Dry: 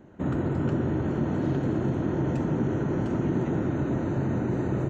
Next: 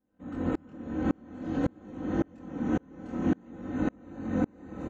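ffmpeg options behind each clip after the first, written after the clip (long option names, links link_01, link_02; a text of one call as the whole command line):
ffmpeg -i in.wav -af "flanger=delay=19.5:depth=6.6:speed=0.52,aecho=1:1:3.9:0.85,aeval=exprs='val(0)*pow(10,-35*if(lt(mod(-1.8*n/s,1),2*abs(-1.8)/1000),1-mod(-1.8*n/s,1)/(2*abs(-1.8)/1000),(mod(-1.8*n/s,1)-2*abs(-1.8)/1000)/(1-2*abs(-1.8)/1000))/20)':channel_layout=same,volume=5dB" out.wav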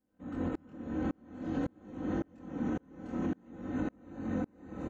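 ffmpeg -i in.wav -af "alimiter=limit=-22.5dB:level=0:latency=1:release=322,volume=-2dB" out.wav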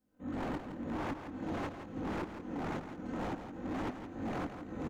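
ffmpeg -i in.wav -filter_complex "[0:a]flanger=delay=18:depth=6.7:speed=2.1,aeval=exprs='0.0141*(abs(mod(val(0)/0.0141+3,4)-2)-1)':channel_layout=same,asplit=2[link_01][link_02];[link_02]aecho=0:1:167|334|501|668:0.355|0.114|0.0363|0.0116[link_03];[link_01][link_03]amix=inputs=2:normalize=0,volume=5dB" out.wav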